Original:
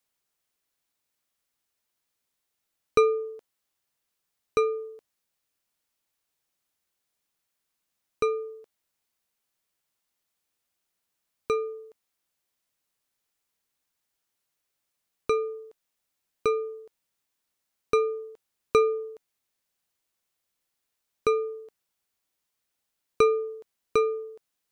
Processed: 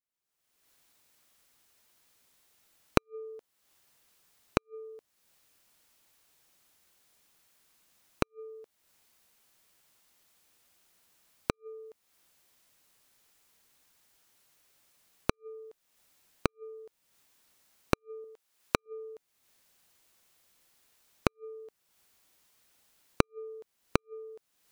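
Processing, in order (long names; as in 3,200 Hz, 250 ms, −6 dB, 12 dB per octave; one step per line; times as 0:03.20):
camcorder AGC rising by 43 dB per second
0:18.24–0:18.86: low-shelf EQ 330 Hz −11 dB
gate with flip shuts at −1 dBFS, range −39 dB
level −17 dB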